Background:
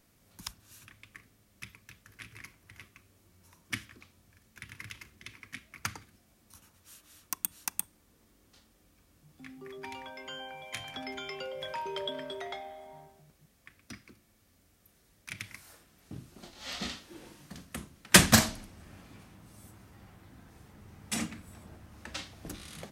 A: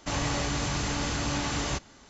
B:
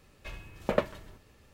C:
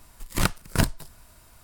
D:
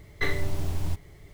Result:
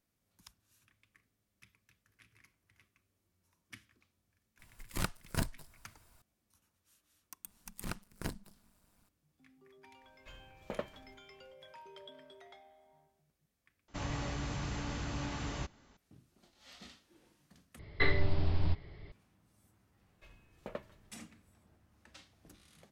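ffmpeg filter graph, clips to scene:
-filter_complex "[3:a]asplit=2[a][b];[2:a]asplit=2[c][d];[0:a]volume=-16.5dB[e];[b]tremolo=f=200:d=0.947[f];[c]equalizer=f=9.6k:w=6.7:g=-13.5[g];[1:a]bass=f=250:g=4,treble=f=4k:g=-6[h];[4:a]aresample=11025,aresample=44100[i];[e]asplit=3[j][k][l];[j]atrim=end=13.884[m];[h]atrim=end=2.09,asetpts=PTS-STARTPTS,volume=-10.5dB[n];[k]atrim=start=15.966:end=17.794[o];[i]atrim=end=1.33,asetpts=PTS-STARTPTS,volume=-1.5dB[p];[l]atrim=start=19.116[q];[a]atrim=end=1.63,asetpts=PTS-STARTPTS,volume=-12dB,afade=t=in:d=0.004:c=hsin,afade=t=out:st=1.626:d=0.004:c=hsin,adelay=4590[r];[f]atrim=end=1.63,asetpts=PTS-STARTPTS,volume=-14dB,afade=t=in:d=0.004:c=hsin,afade=t=out:st=1.626:d=0.004:c=hsin,adelay=328986S[s];[g]atrim=end=1.53,asetpts=PTS-STARTPTS,volume=-12.5dB,afade=t=in:d=0.004:c=hsin,afade=t=out:st=1.526:d=0.004:c=hsin,adelay=10010[t];[d]atrim=end=1.53,asetpts=PTS-STARTPTS,volume=-16.5dB,afade=t=in:d=0.004:c=hsin,afade=t=out:st=1.526:d=0.004:c=hsin,adelay=19970[u];[m][n]acrossfade=d=0.004:c1=hsin:c2=hsin[v];[v][o]acrossfade=d=0.004:c1=hsin:c2=hsin[w];[w][p]acrossfade=d=0.004:c1=hsin:c2=hsin[x];[x][q]acrossfade=d=0.004:c1=hsin:c2=hsin[y];[y][r][s][t][u]amix=inputs=5:normalize=0"

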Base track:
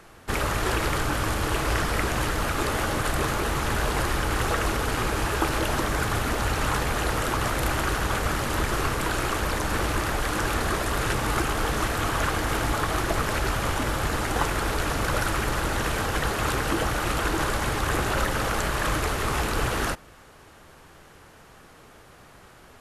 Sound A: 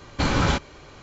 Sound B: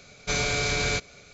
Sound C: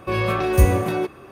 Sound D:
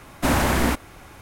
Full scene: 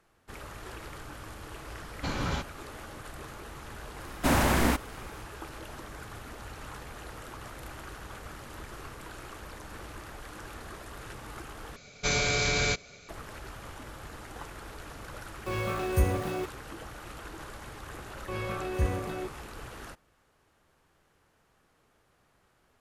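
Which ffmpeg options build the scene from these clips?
-filter_complex "[3:a]asplit=2[a][b];[0:a]volume=-18dB[c];[a]aeval=exprs='val(0)*gte(abs(val(0)),0.0299)':c=same[d];[b]acrossover=split=6800[e][f];[f]acompressor=threshold=-43dB:ratio=4:attack=1:release=60[g];[e][g]amix=inputs=2:normalize=0[h];[c]asplit=2[i][j];[i]atrim=end=11.764[k];[2:a]atrim=end=1.33,asetpts=PTS-STARTPTS,volume=-1dB[l];[j]atrim=start=13.086[m];[1:a]atrim=end=1.02,asetpts=PTS-STARTPTS,volume=-10.5dB,afade=t=in:d=0.004:c=hsin,afade=t=out:st=1.016:d=0.004:c=hsin,adelay=1840[n];[4:a]atrim=end=1.21,asetpts=PTS-STARTPTS,volume=-4dB,afade=t=in:d=0.004:c=hsin,afade=t=out:st=1.206:d=0.004:c=hsin,adelay=176841S[o];[d]atrim=end=1.31,asetpts=PTS-STARTPTS,volume=-10dB,afade=t=in:d=0.004:c=hsin,afade=t=out:st=1.306:d=0.004:c=hsin,adelay=15390[p];[h]atrim=end=1.31,asetpts=PTS-STARTPTS,volume=-13dB,afade=t=in:d=0.004:c=hsin,afade=t=out:st=1.306:d=0.004:c=hsin,adelay=18210[q];[k][l]acrossfade=d=0.004:c1=hsin:c2=hsin[r];[r][m]acrossfade=d=0.004:c1=hsin:c2=hsin[s];[s][n][o][p][q]amix=inputs=5:normalize=0"

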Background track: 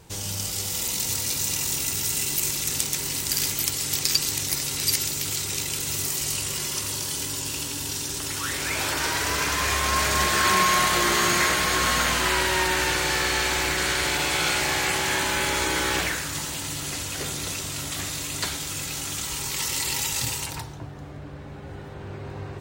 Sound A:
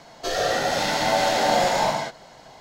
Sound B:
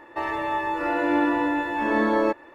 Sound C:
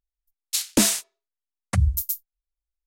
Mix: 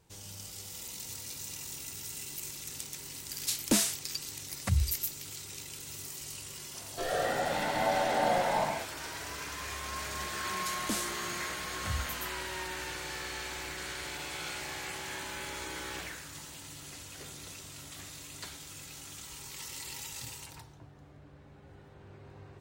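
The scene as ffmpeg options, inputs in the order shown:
-filter_complex "[3:a]asplit=2[a][b];[0:a]volume=-15.5dB[c];[1:a]lowpass=2.9k[d];[a]atrim=end=2.86,asetpts=PTS-STARTPTS,volume=-7.5dB,afade=t=in:d=0.004:c=hsin,afade=t=out:st=2.856:d=0.004:c=hsin,adelay=2940[e];[d]atrim=end=2.6,asetpts=PTS-STARTPTS,volume=-7.5dB,afade=t=in:d=0.004:c=hsin,afade=t=out:st=2.596:d=0.004:c=hsin,adelay=297234S[f];[b]atrim=end=2.86,asetpts=PTS-STARTPTS,volume=-16dB,afade=t=in:d=0.004:c=hsin,afade=t=out:st=2.856:d=0.004:c=hsin,adelay=10120[g];[c][e][f][g]amix=inputs=4:normalize=0"

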